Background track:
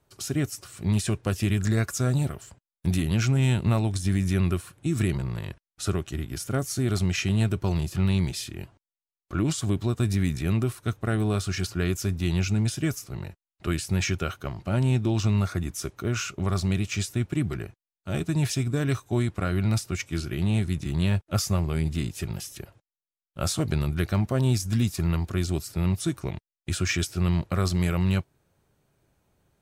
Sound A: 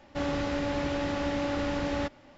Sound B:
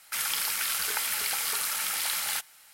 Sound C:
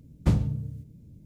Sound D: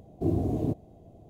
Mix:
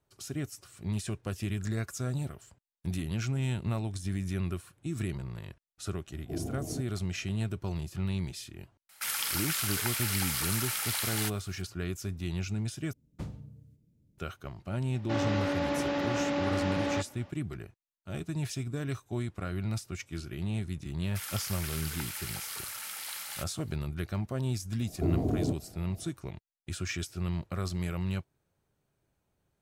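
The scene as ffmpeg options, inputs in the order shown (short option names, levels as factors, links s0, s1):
-filter_complex "[4:a]asplit=2[s0][s1];[2:a]asplit=2[s2][s3];[0:a]volume=0.355[s4];[3:a]lowshelf=f=230:g=-5.5[s5];[1:a]highpass=140,lowpass=6500[s6];[s1]alimiter=limit=0.106:level=0:latency=1:release=71[s7];[s4]asplit=2[s8][s9];[s8]atrim=end=12.934[s10];[s5]atrim=end=1.25,asetpts=PTS-STARTPTS,volume=0.211[s11];[s9]atrim=start=14.176[s12];[s0]atrim=end=1.29,asetpts=PTS-STARTPTS,volume=0.335,afade=t=in:d=0.004:c=hsin,afade=t=out:st=1.286:d=0.004:c=hsin,adelay=6080[s13];[s2]atrim=end=2.73,asetpts=PTS-STARTPTS,volume=0.708,afade=t=in:d=0.004:c=hsin,afade=t=out:st=2.726:d=0.004:c=hsin,adelay=8890[s14];[s6]atrim=end=2.37,asetpts=PTS-STARTPTS,afade=t=in:d=0.004:c=hsin,afade=t=out:st=2.366:d=0.004:c=hsin,adelay=14940[s15];[s3]atrim=end=2.73,asetpts=PTS-STARTPTS,volume=0.316,afade=t=in:d=0.004:c=hsin,afade=t=out:st=2.726:d=0.004:c=hsin,adelay=21030[s16];[s7]atrim=end=1.29,asetpts=PTS-STARTPTS,volume=0.944,afade=t=in:d=0.004:c=hsin,afade=t=out:st=1.286:d=0.004:c=hsin,adelay=24800[s17];[s10][s11]acrossfade=d=0.004:c1=hsin:c2=hsin[s18];[s18][s12]acrossfade=d=0.004:c1=hsin:c2=hsin[s19];[s19][s13][s14][s15][s16][s17]amix=inputs=6:normalize=0"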